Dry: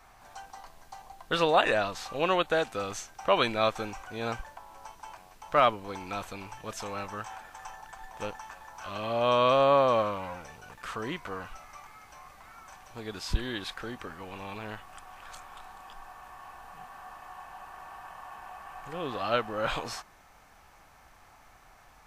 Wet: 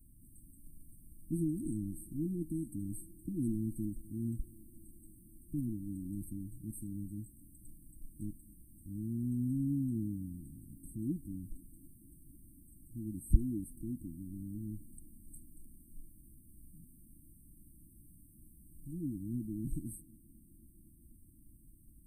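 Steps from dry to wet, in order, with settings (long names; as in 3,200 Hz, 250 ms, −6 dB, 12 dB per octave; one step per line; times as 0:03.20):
linear-phase brick-wall band-stop 340–8,100 Hz
on a send: tape delay 248 ms, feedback 89%, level −23 dB
on the sum: level +3 dB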